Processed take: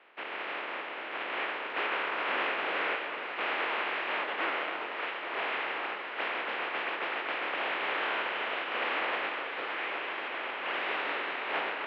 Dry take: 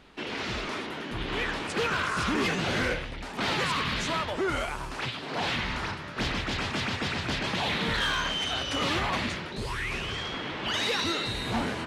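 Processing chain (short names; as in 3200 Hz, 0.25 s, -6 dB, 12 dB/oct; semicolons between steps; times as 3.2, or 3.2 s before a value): spectral contrast lowered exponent 0.26; echo with dull and thin repeats by turns 0.275 s, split 1400 Hz, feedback 89%, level -9 dB; mistuned SSB -53 Hz 420–2800 Hz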